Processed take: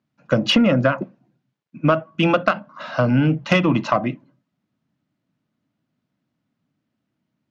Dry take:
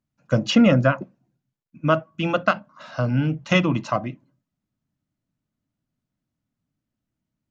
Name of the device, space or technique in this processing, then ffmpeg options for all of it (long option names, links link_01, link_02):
AM radio: -af "highpass=150,lowpass=4100,acompressor=threshold=-20dB:ratio=10,asoftclip=type=tanh:threshold=-14dB,volume=9dB"